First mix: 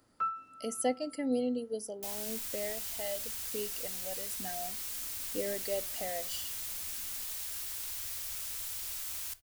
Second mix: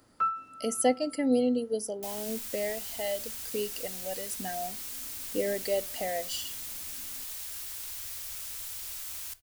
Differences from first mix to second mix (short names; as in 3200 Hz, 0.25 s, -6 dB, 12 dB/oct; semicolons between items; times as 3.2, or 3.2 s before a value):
speech +6.0 dB; first sound +5.0 dB